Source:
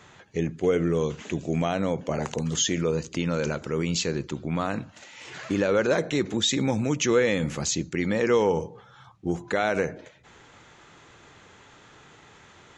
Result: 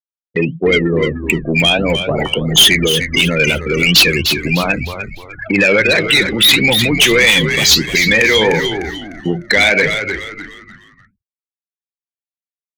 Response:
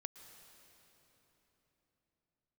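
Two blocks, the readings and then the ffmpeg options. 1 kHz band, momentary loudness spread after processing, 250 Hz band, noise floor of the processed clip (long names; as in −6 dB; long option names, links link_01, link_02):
+8.5 dB, 14 LU, +9.0 dB, below −85 dBFS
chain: -filter_complex "[0:a]highpass=frequency=110:width=0.5412,highpass=frequency=110:width=1.3066,afftfilt=real='re*gte(hypot(re,im),0.0447)':imag='im*gte(hypot(re,im),0.0447)':win_size=1024:overlap=0.75,agate=range=-7dB:threshold=-45dB:ratio=16:detection=peak,lowpass=frequency=4000:width=0.5412,lowpass=frequency=4000:width=1.3066,adynamicequalizer=threshold=0.00794:dfrequency=230:dqfactor=3.5:tfrequency=230:tqfactor=3.5:attack=5:release=100:ratio=0.375:range=2:mode=cutabove:tftype=bell,asplit=2[link_01][link_02];[link_02]acompressor=threshold=-37dB:ratio=8,volume=1dB[link_03];[link_01][link_03]amix=inputs=2:normalize=0,aexciter=amount=14.7:drive=5.9:freq=2000,asoftclip=type=hard:threshold=-3dB,flanger=delay=4.3:depth=7.3:regen=63:speed=1.5:shape=triangular,asoftclip=type=tanh:threshold=-16dB,asplit=2[link_04][link_05];[link_05]asplit=4[link_06][link_07][link_08][link_09];[link_06]adelay=301,afreqshift=-92,volume=-9dB[link_10];[link_07]adelay=602,afreqshift=-184,volume=-18.1dB[link_11];[link_08]adelay=903,afreqshift=-276,volume=-27.2dB[link_12];[link_09]adelay=1204,afreqshift=-368,volume=-36.4dB[link_13];[link_10][link_11][link_12][link_13]amix=inputs=4:normalize=0[link_14];[link_04][link_14]amix=inputs=2:normalize=0,alimiter=level_in=16.5dB:limit=-1dB:release=50:level=0:latency=1,volume=-3dB"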